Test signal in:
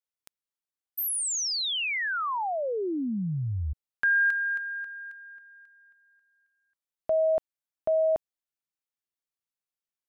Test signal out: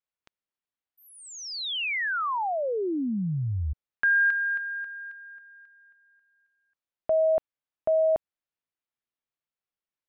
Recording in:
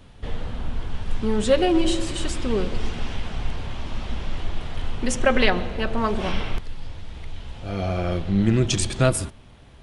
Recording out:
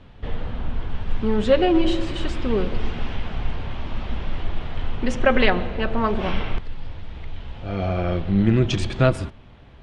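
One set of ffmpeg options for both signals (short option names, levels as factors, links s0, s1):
-af "lowpass=3300,volume=1.19"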